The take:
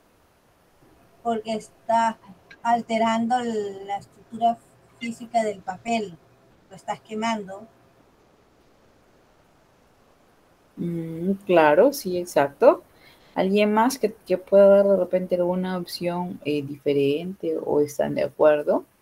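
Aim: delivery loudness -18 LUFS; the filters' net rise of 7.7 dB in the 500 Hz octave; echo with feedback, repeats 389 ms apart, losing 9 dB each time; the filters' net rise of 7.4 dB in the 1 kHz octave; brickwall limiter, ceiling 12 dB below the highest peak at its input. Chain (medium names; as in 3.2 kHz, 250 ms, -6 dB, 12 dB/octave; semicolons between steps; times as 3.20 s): peaking EQ 500 Hz +7.5 dB; peaking EQ 1 kHz +6.5 dB; peak limiter -6.5 dBFS; feedback delay 389 ms, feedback 35%, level -9 dB; trim +0.5 dB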